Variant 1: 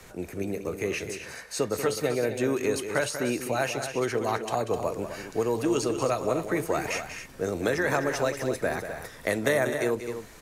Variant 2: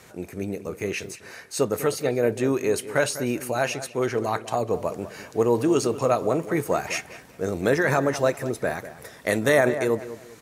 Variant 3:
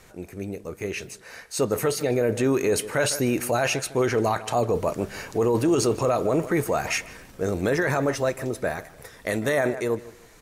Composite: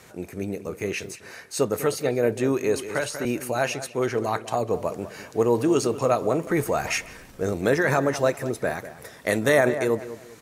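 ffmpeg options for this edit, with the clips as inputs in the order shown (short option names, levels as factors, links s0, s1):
-filter_complex "[1:a]asplit=3[s0][s1][s2];[s0]atrim=end=2.752[s3];[0:a]atrim=start=2.748:end=3.252[s4];[s1]atrim=start=3.248:end=6.472[s5];[2:a]atrim=start=6.468:end=7.532[s6];[s2]atrim=start=7.528[s7];[s3][s4]acrossfade=d=0.004:c1=hsin:c2=hsin[s8];[s8][s5]acrossfade=d=0.004:c1=hsin:c2=hsin[s9];[s9][s6]acrossfade=d=0.004:c1=hsin:c2=hsin[s10];[s10][s7]acrossfade=d=0.004:c1=hsin:c2=hsin"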